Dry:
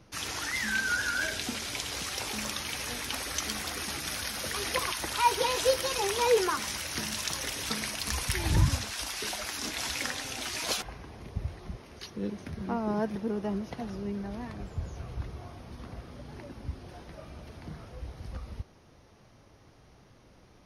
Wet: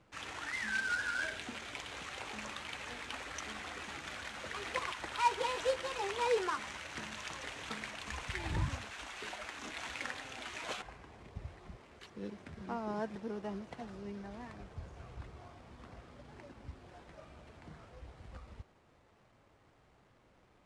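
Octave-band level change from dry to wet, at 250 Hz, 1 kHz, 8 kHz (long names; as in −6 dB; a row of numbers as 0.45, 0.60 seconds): −10.0, −5.5, −16.0 decibels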